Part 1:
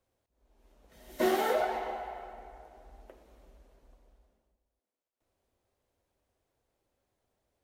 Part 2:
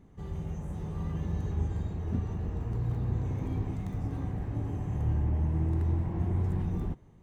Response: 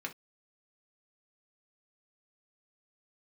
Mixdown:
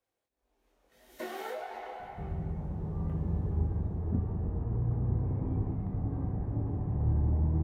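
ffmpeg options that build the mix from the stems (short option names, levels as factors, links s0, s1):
-filter_complex "[0:a]lowshelf=f=240:g=-7.5,flanger=delay=20:depth=3.4:speed=1.8,acompressor=threshold=0.0178:ratio=5,volume=0.668,asplit=2[s0][s1];[s1]volume=0.473[s2];[1:a]lowpass=1000,adelay=2000,volume=1.06[s3];[2:a]atrim=start_sample=2205[s4];[s2][s4]afir=irnorm=-1:irlink=0[s5];[s0][s3][s5]amix=inputs=3:normalize=0"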